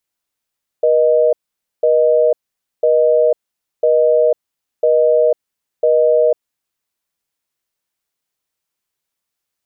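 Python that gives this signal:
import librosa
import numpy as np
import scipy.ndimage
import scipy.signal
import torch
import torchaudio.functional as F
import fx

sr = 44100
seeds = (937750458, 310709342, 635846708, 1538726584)

y = fx.call_progress(sr, length_s=5.51, kind='busy tone', level_db=-12.0)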